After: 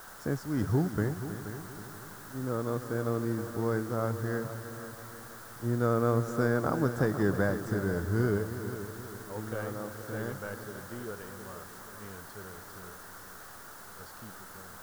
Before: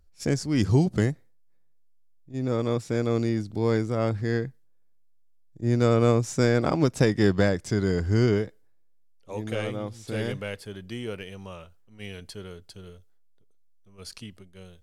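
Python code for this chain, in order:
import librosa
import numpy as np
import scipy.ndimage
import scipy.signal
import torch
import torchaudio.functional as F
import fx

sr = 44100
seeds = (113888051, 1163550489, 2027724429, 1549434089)

y = fx.quant_dither(x, sr, seeds[0], bits=6, dither='triangular')
y = fx.high_shelf_res(y, sr, hz=1900.0, db=-8.5, q=3.0)
y = fx.echo_heads(y, sr, ms=159, heads='second and third', feedback_pct=49, wet_db=-12)
y = y * librosa.db_to_amplitude(-7.0)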